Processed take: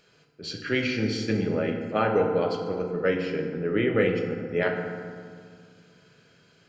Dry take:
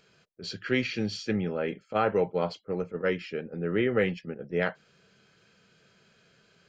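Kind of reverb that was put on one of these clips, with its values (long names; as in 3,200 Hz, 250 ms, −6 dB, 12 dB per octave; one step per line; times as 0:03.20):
feedback delay network reverb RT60 2 s, low-frequency decay 1.4×, high-frequency decay 0.5×, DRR 2 dB
level +1 dB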